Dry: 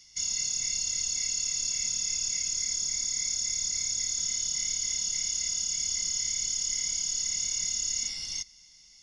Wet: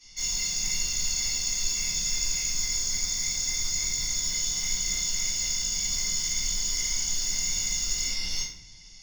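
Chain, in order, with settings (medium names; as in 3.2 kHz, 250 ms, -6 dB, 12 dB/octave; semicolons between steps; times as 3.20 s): treble shelf 4.7 kHz -7 dB; saturation -32.5 dBFS, distortion -14 dB; simulated room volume 99 m³, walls mixed, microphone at 3.6 m; trim -3 dB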